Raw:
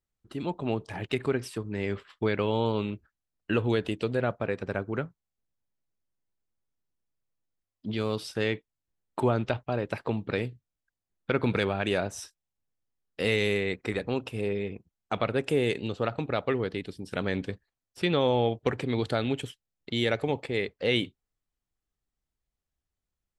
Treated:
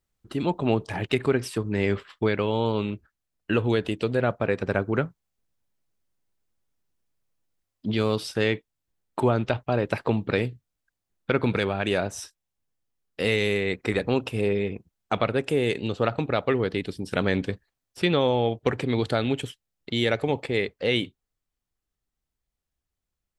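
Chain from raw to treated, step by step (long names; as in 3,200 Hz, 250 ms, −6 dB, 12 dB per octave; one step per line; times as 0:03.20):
speech leveller within 3 dB 0.5 s
level +4 dB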